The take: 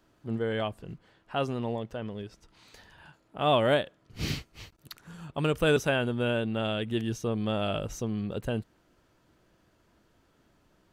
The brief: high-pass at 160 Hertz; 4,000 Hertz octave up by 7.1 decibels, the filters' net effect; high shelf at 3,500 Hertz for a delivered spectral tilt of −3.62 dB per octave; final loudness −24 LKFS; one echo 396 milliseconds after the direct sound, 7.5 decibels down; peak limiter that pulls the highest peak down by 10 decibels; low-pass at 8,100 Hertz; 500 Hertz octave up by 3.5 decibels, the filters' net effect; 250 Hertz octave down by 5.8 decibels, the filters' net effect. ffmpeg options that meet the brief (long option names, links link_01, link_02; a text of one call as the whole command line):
ffmpeg -i in.wav -af "highpass=160,lowpass=8100,equalizer=frequency=250:width_type=o:gain=-8.5,equalizer=frequency=500:width_type=o:gain=6,highshelf=frequency=3500:gain=4,equalizer=frequency=4000:width_type=o:gain=7,alimiter=limit=-18dB:level=0:latency=1,aecho=1:1:396:0.422,volume=7dB" out.wav